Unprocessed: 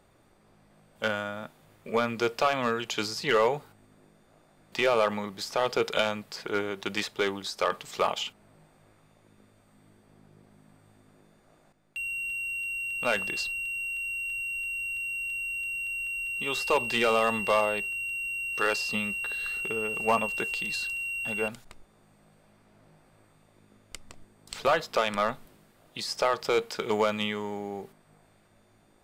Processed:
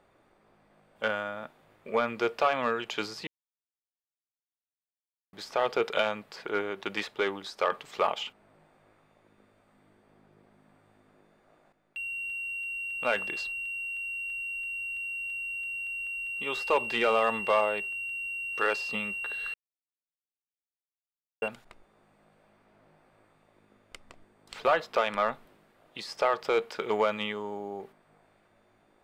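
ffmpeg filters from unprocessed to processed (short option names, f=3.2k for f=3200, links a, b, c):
-filter_complex "[0:a]asettb=1/sr,asplit=3[a][b][c];[a]atrim=end=27.324[d];[b]atrim=start=27.32:end=27.8,asetpts=PTS-STARTPTS,afade=t=in:d=0.004:c=qsin,afade=t=out:st=0.476:d=0.004:c=qsin,equalizer=f=2k:t=o:w=0.71:g=-12[e];[c]atrim=start=27.796[f];[d][e]acrossfade=d=0.004:c1=hsin:c2=qsin[g];[g][f]acrossfade=d=0.004:c1=qsin:c2=hsin,asplit=5[h][i][j][k][l];[h]atrim=end=3.27,asetpts=PTS-STARTPTS,afade=t=out:st=3.266:d=0.004:c=hsin[m];[i]atrim=start=3.27:end=5.33,asetpts=PTS-STARTPTS,volume=0[n];[j]atrim=start=5.33:end=19.54,asetpts=PTS-STARTPTS,afade=t=in:d=0.004:c=hsin,afade=t=out:st=14.206:d=0.004:c=hsin[o];[k]atrim=start=19.54:end=21.42,asetpts=PTS-STARTPTS,volume=0[p];[l]atrim=start=21.42,asetpts=PTS-STARTPTS,afade=t=in:d=0.004:c=hsin[q];[m][n][o][p][q]concat=n=5:v=0:a=1,bass=f=250:g=-8,treble=f=4k:g=-11"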